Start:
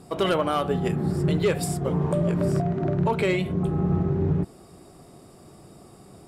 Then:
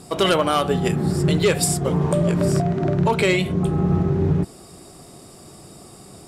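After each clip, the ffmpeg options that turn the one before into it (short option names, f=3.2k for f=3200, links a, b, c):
-af "equalizer=f=7k:t=o:w=2.5:g=8.5,volume=4dB"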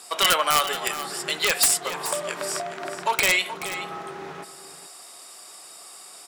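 -af "highpass=1.1k,aeval=exprs='(mod(4.47*val(0)+1,2)-1)/4.47':c=same,aecho=1:1:427:0.237,volume=4dB"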